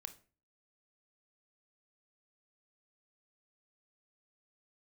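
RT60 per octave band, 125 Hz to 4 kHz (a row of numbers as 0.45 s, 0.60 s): 0.50 s, 0.50 s, 0.40 s, 0.35 s, 0.35 s, 0.30 s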